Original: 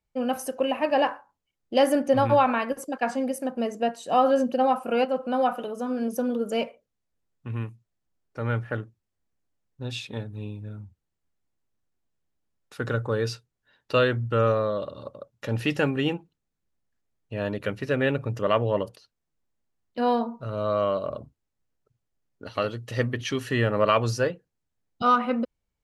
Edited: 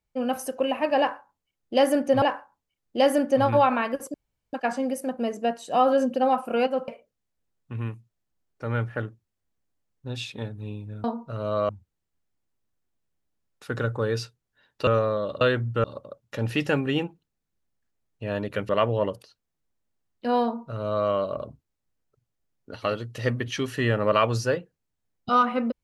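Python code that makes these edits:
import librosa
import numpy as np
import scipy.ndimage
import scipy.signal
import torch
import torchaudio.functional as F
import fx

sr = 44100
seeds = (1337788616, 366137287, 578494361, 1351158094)

y = fx.edit(x, sr, fx.repeat(start_s=0.99, length_s=1.23, count=2),
    fx.insert_room_tone(at_s=2.91, length_s=0.39),
    fx.cut(start_s=5.26, length_s=1.37),
    fx.move(start_s=13.97, length_s=0.43, to_s=14.94),
    fx.cut(start_s=17.79, length_s=0.63),
    fx.duplicate(start_s=20.17, length_s=0.65, to_s=10.79), tone=tone)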